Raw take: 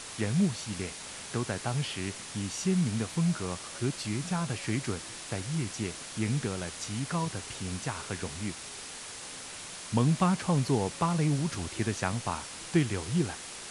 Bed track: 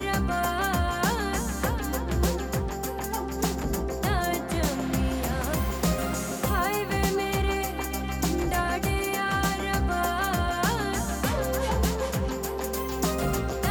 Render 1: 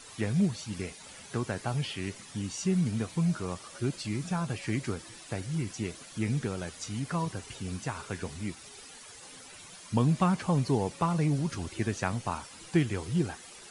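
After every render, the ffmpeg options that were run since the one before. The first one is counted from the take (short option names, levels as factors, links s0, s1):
-af "afftdn=nr=11:nf=-43"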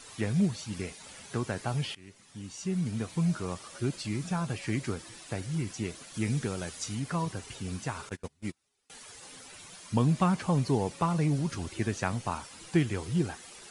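-filter_complex "[0:a]asettb=1/sr,asplit=3[s0][s1][s2];[s0]atrim=end=6.144[s3];[s1]atrim=start=6.14:end=6.95,asetpts=PTS-STARTPTS,afade=t=in:d=0.004:c=qsin,afade=t=out:st=0.806:d=0.004:c=qsin,highshelf=f=4500:g=5[s4];[s2]atrim=start=6.946[s5];[s3][s4]acrossfade=d=0.004:c1=hsin:c2=qsin[s6];[s6][s5]acrossfade=d=0.004:c1=qsin:c2=hsin,asettb=1/sr,asplit=3[s7][s8][s9];[s7]atrim=end=8.094[s10];[s8]atrim=start=8.09:end=8.9,asetpts=PTS-STARTPTS,afade=t=in:d=0.004:c=qsin,afade=t=out:st=0.806:d=0.004:c=qsin,agate=range=0.0316:threshold=0.0178:ratio=16:release=100:detection=peak[s11];[s9]atrim=start=8.896[s12];[s10][s11]acrossfade=d=0.004:c1=hsin:c2=qsin[s13];[s13][s12]acrossfade=d=0.004:c1=qsin:c2=hsin,asplit=2[s14][s15];[s14]atrim=end=1.95,asetpts=PTS-STARTPTS,afade=t=out:st=1.946:d=0.004:c=hsin:silence=0.0944061[s16];[s15]atrim=start=1.95,asetpts=PTS-STARTPTS,afade=t=in:d=1.3:silence=0.0944061[s17];[s16][s17]concat=n=2:v=0:a=1"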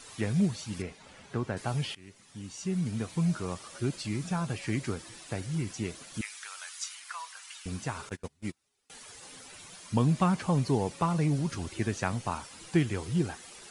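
-filter_complex "[0:a]asettb=1/sr,asplit=3[s0][s1][s2];[s0]atrim=end=0.824[s3];[s1]atrim=start=0.82:end=1.57,asetpts=PTS-STARTPTS,afade=t=in:d=0.004:c=qsin,afade=t=out:st=0.746:d=0.004:c=qsin,aemphasis=mode=reproduction:type=75kf[s4];[s2]atrim=start=1.566[s5];[s3][s4]acrossfade=d=0.004:c1=hsin:c2=qsin[s6];[s6][s5]acrossfade=d=0.004:c1=qsin:c2=hsin,asettb=1/sr,asplit=3[s7][s8][s9];[s7]atrim=end=6.214[s10];[s8]atrim=start=6.21:end=7.66,asetpts=PTS-STARTPTS,afade=t=in:d=0.004:c=qsin,afade=t=out:st=1.446:d=0.004:c=qsin,highpass=f=1100:w=0.5412,highpass=f=1100:w=1.3066[s11];[s9]atrim=start=7.656[s12];[s10][s11]acrossfade=d=0.004:c1=hsin:c2=qsin[s13];[s13][s12]acrossfade=d=0.004:c1=qsin:c2=hsin"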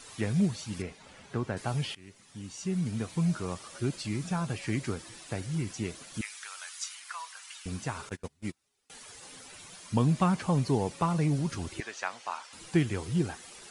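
-filter_complex "[0:a]asettb=1/sr,asplit=3[s0][s1][s2];[s0]atrim=end=11.804[s3];[s1]atrim=start=11.8:end=12.53,asetpts=PTS-STARTPTS,afade=t=in:d=0.004:c=qsin,afade=t=out:st=0.726:d=0.004:c=qsin,highpass=770,lowpass=6300[s4];[s2]atrim=start=12.526[s5];[s3][s4]acrossfade=d=0.004:c1=hsin:c2=qsin[s6];[s6][s5]acrossfade=d=0.004:c1=qsin:c2=hsin"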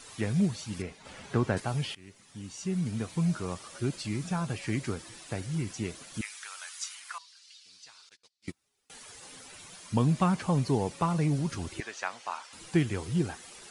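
-filter_complex "[0:a]asettb=1/sr,asplit=3[s0][s1][s2];[s0]atrim=end=1.054[s3];[s1]atrim=start=1.05:end=1.6,asetpts=PTS-STARTPTS,afade=t=in:d=0.004:c=qsin,afade=t=out:st=0.546:d=0.004:c=qsin,acontrast=35[s4];[s2]atrim=start=1.596[s5];[s3][s4]acrossfade=d=0.004:c1=hsin:c2=qsin[s6];[s6][s5]acrossfade=d=0.004:c1=qsin:c2=hsin,asettb=1/sr,asplit=3[s7][s8][s9];[s7]atrim=end=7.184[s10];[s8]atrim=start=7.18:end=8.48,asetpts=PTS-STARTPTS,afade=t=in:d=0.004:c=qsin,afade=t=out:st=1.296:d=0.004:c=qsin,bandpass=f=4500:t=q:w=3.1[s11];[s9]atrim=start=8.476[s12];[s10][s11]acrossfade=d=0.004:c1=hsin:c2=qsin[s13];[s13][s12]acrossfade=d=0.004:c1=qsin:c2=hsin"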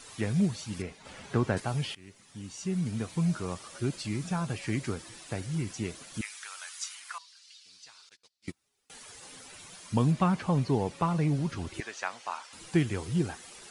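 -filter_complex "[0:a]asettb=1/sr,asplit=3[s0][s1][s2];[s0]atrim=end=10.114[s3];[s1]atrim=start=10.11:end=11.74,asetpts=PTS-STARTPTS,afade=t=in:d=0.004:c=qsin,afade=t=out:st=1.626:d=0.004:c=qsin,acrossover=split=4600[s4][s5];[s5]acompressor=threshold=0.002:ratio=4:attack=1:release=60[s6];[s4][s6]amix=inputs=2:normalize=0[s7];[s2]atrim=start=11.736[s8];[s3][s7]acrossfade=d=0.004:c1=hsin:c2=qsin[s9];[s9][s8]acrossfade=d=0.004:c1=qsin:c2=hsin"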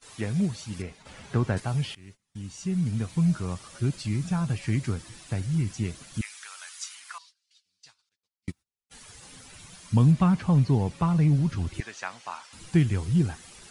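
-af "agate=range=0.0708:threshold=0.00282:ratio=16:detection=peak,asubboost=boost=3:cutoff=210"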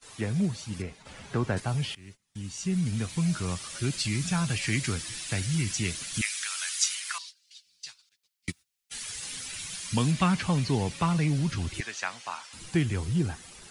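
-filter_complex "[0:a]acrossover=split=230|1200|1500[s0][s1][s2][s3];[s0]alimiter=level_in=1.19:limit=0.0631:level=0:latency=1,volume=0.841[s4];[s3]dynaudnorm=f=740:g=9:m=3.98[s5];[s4][s1][s2][s5]amix=inputs=4:normalize=0"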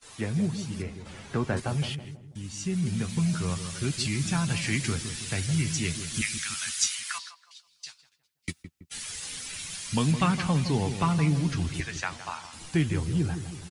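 -filter_complex "[0:a]asplit=2[s0][s1];[s1]adelay=13,volume=0.251[s2];[s0][s2]amix=inputs=2:normalize=0,asplit=2[s3][s4];[s4]adelay=163,lowpass=f=810:p=1,volume=0.376,asplit=2[s5][s6];[s6]adelay=163,lowpass=f=810:p=1,volume=0.52,asplit=2[s7][s8];[s8]adelay=163,lowpass=f=810:p=1,volume=0.52,asplit=2[s9][s10];[s10]adelay=163,lowpass=f=810:p=1,volume=0.52,asplit=2[s11][s12];[s12]adelay=163,lowpass=f=810:p=1,volume=0.52,asplit=2[s13][s14];[s14]adelay=163,lowpass=f=810:p=1,volume=0.52[s15];[s3][s5][s7][s9][s11][s13][s15]amix=inputs=7:normalize=0"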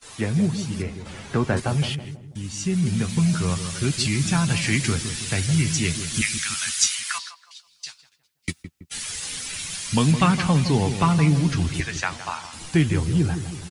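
-af "volume=2"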